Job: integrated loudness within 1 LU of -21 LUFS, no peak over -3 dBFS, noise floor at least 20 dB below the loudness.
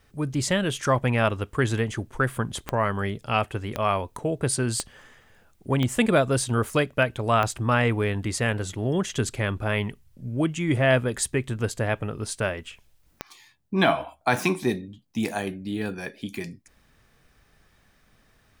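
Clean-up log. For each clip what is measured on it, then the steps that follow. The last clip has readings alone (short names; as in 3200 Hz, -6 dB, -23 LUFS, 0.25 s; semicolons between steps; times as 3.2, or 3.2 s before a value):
clicks 6; loudness -25.5 LUFS; peak -8.0 dBFS; loudness target -21.0 LUFS
-> de-click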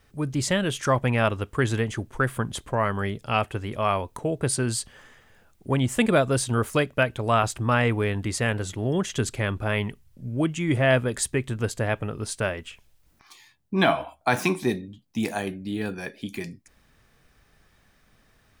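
clicks 2; loudness -25.5 LUFS; peak -8.0 dBFS; loudness target -21.0 LUFS
-> gain +4.5 dB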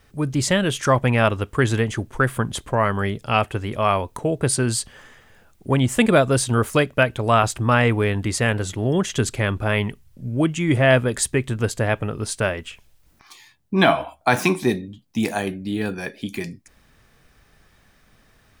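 loudness -21.0 LUFS; peak -3.5 dBFS; noise floor -58 dBFS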